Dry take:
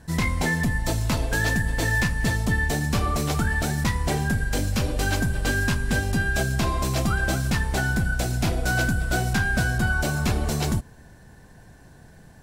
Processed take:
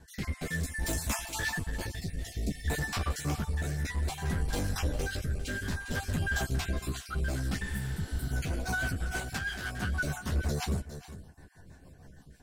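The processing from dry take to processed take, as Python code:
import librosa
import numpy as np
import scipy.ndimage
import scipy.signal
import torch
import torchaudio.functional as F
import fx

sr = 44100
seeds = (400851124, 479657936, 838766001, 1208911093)

y = fx.spec_dropout(x, sr, seeds[0], share_pct=32)
y = fx.high_shelf(y, sr, hz=4500.0, db=10.5, at=(0.5, 1.26))
y = np.clip(10.0 ** (24.0 / 20.0) * y, -1.0, 1.0) / 10.0 ** (24.0 / 20.0)
y = fx.chorus_voices(y, sr, voices=4, hz=0.47, base_ms=13, depth_ms=2.3, mix_pct=40)
y = fx.brickwall_bandstop(y, sr, low_hz=780.0, high_hz=1800.0, at=(1.95, 2.68))
y = fx.low_shelf(y, sr, hz=390.0, db=-10.0, at=(9.2, 9.83))
y = y + 10.0 ** (-13.0 / 20.0) * np.pad(y, (int(405 * sr / 1000.0), 0))[:len(y)]
y = fx.rotary_switch(y, sr, hz=0.6, then_hz=6.3, switch_at_s=7.6)
y = fx.spec_repair(y, sr, seeds[1], start_s=7.66, length_s=0.6, low_hz=250.0, high_hz=8000.0, source='both')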